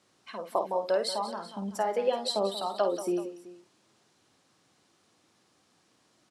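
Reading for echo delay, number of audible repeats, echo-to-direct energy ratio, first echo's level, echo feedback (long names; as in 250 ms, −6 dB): 51 ms, 3, −7.0 dB, −8.5 dB, repeats not evenly spaced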